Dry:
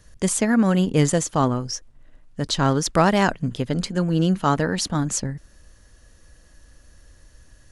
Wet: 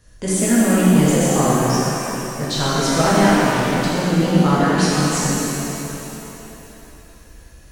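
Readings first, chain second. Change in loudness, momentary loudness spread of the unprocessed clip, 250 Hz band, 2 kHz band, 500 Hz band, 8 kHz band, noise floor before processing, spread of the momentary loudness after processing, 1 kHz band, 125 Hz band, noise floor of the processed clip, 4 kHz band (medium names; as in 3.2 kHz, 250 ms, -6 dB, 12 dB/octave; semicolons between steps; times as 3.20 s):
+4.5 dB, 12 LU, +5.5 dB, +6.0 dB, +5.0 dB, +5.5 dB, -53 dBFS, 13 LU, +5.0 dB, +4.0 dB, -44 dBFS, +5.5 dB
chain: saturation -10.5 dBFS, distortion -18 dB; pitch-shifted reverb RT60 3.2 s, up +7 st, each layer -8 dB, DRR -8.5 dB; trim -3.5 dB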